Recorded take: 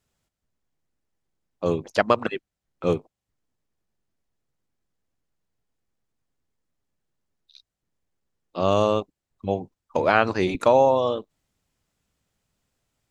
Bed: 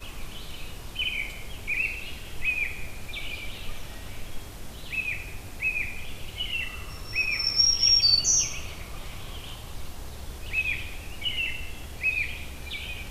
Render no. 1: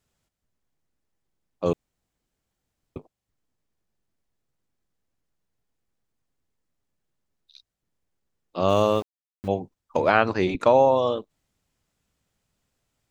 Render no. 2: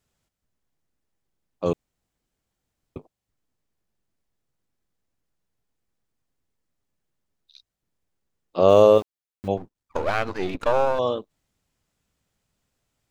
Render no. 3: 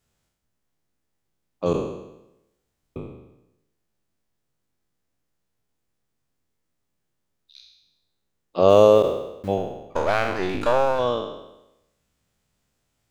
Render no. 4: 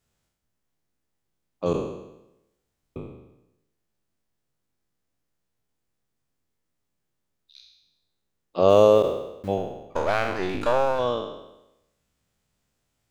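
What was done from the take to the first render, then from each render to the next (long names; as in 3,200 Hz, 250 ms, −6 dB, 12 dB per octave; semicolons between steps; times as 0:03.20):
0:01.73–0:02.96: fill with room tone; 0:08.69–0:09.48: centre clipping without the shift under −39 dBFS; 0:10.10–0:10.92: high-frequency loss of the air 62 metres
0:08.58–0:08.98: parametric band 480 Hz +11 dB; 0:09.57–0:10.99: gain on one half-wave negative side −12 dB
peak hold with a decay on every bin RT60 0.91 s
level −2 dB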